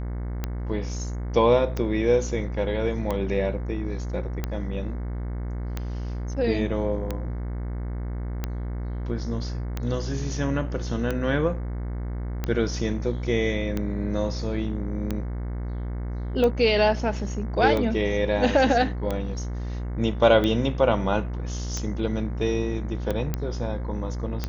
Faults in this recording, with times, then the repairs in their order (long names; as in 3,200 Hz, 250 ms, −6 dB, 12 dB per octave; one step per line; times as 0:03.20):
mains buzz 60 Hz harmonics 37 −30 dBFS
scratch tick 45 rpm −14 dBFS
0:23.34: click −13 dBFS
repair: click removal
hum removal 60 Hz, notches 37